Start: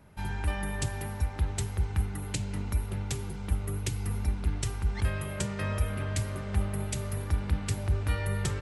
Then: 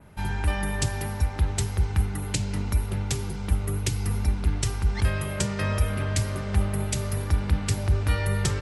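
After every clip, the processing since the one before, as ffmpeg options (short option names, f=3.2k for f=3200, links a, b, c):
-af "adynamicequalizer=threshold=0.00224:dfrequency=5200:dqfactor=1.8:tfrequency=5200:tqfactor=1.8:attack=5:release=100:ratio=0.375:range=2.5:mode=boostabove:tftype=bell,acontrast=88,volume=-2dB"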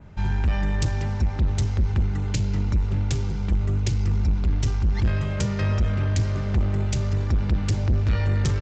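-af "lowshelf=f=180:g=9,aresample=16000,asoftclip=type=tanh:threshold=-16dB,aresample=44100"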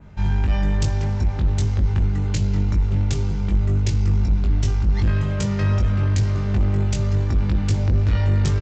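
-filter_complex "[0:a]asplit=2[a][b];[b]adelay=20,volume=-4.5dB[c];[a][c]amix=inputs=2:normalize=0"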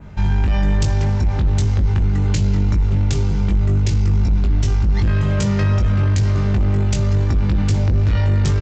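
-af "alimiter=limit=-17.5dB:level=0:latency=1:release=27,volume=6.5dB"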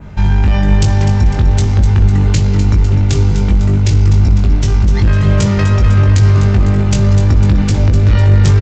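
-af "aecho=1:1:251|502|753|1004|1255|1506|1757:0.316|0.183|0.106|0.0617|0.0358|0.0208|0.012,volume=6dB"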